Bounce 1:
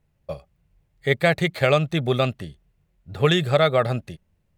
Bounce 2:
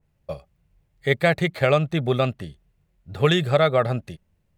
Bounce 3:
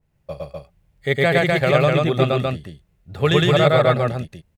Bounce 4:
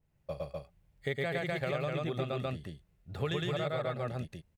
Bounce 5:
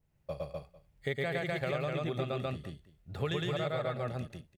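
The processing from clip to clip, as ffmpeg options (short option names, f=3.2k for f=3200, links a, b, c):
-af "adynamicequalizer=threshold=0.0158:dfrequency=2400:dqfactor=0.7:tfrequency=2400:tqfactor=0.7:attack=5:release=100:ratio=0.375:range=3:mode=cutabove:tftype=highshelf"
-af "aecho=1:1:110.8|250.7:1|0.794"
-af "acompressor=threshold=-24dB:ratio=6,volume=-7dB"
-af "aecho=1:1:199:0.119"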